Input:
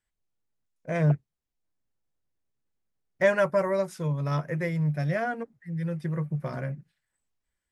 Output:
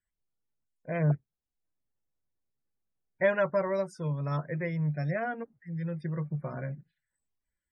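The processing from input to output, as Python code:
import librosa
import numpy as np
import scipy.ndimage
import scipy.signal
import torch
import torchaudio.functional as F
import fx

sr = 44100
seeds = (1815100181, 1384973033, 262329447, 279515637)

y = fx.spec_topn(x, sr, count=64)
y = y * librosa.db_to_amplitude(-3.5)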